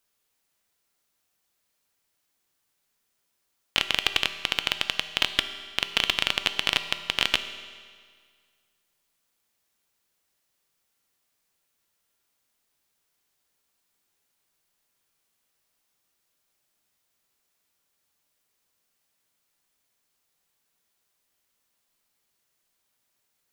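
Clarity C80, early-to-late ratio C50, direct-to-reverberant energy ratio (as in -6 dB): 11.5 dB, 10.5 dB, 9.0 dB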